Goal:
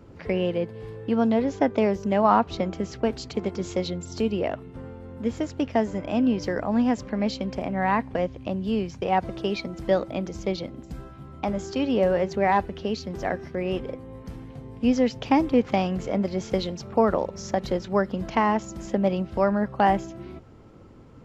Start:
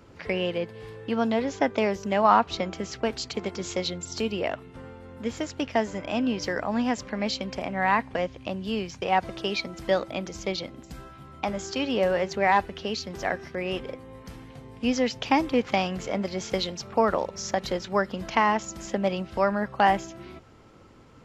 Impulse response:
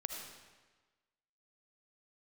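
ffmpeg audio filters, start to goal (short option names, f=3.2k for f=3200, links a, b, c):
-af "tiltshelf=f=810:g=5.5"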